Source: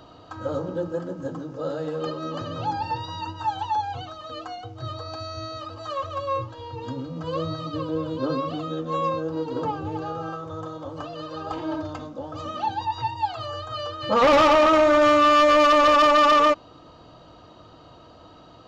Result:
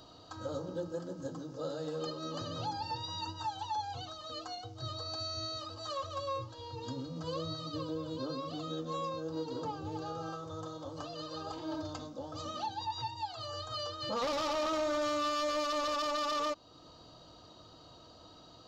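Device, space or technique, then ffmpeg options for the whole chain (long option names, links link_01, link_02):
over-bright horn tweeter: -af "highshelf=frequency=3300:width_type=q:width=1.5:gain=8.5,alimiter=limit=-20dB:level=0:latency=1:release=359,volume=-8dB"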